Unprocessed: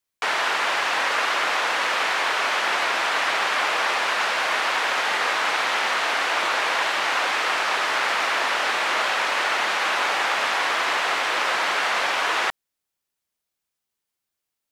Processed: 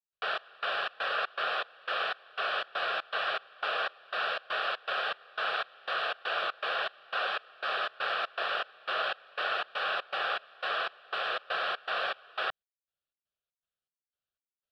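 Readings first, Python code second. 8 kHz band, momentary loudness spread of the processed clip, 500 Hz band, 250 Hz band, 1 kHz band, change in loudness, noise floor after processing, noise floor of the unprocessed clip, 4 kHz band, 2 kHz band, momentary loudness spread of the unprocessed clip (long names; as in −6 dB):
below −30 dB, 3 LU, −8.0 dB, −18.0 dB, −11.0 dB, −11.0 dB, below −85 dBFS, −83 dBFS, −10.5 dB, −11.0 dB, 0 LU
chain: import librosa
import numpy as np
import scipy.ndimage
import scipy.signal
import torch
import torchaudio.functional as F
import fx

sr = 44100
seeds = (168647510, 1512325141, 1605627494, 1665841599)

y = fx.fixed_phaser(x, sr, hz=1400.0, stages=8)
y = fx.step_gate(y, sr, bpm=120, pattern='.xx..xx.xx.xx.', floor_db=-24.0, edge_ms=4.5)
y = scipy.signal.sosfilt(scipy.signal.butter(2, 3700.0, 'lowpass', fs=sr, output='sos'), y)
y = y * 10.0 ** (-5.0 / 20.0)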